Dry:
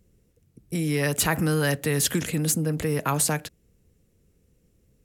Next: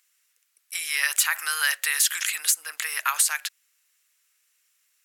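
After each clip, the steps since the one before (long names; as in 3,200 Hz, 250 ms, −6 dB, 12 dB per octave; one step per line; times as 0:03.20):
high-pass filter 1,300 Hz 24 dB per octave
downward compressor 4 to 1, threshold −27 dBFS, peak gain reduction 7 dB
level +8.5 dB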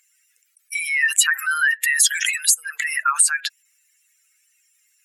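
expanding power law on the bin magnitudes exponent 2.7
level +6 dB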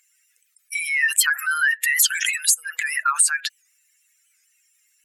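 in parallel at −10.5 dB: soft clipping −11.5 dBFS, distortion −14 dB
on the sum: wow of a warped record 78 rpm, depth 160 cents
level −3 dB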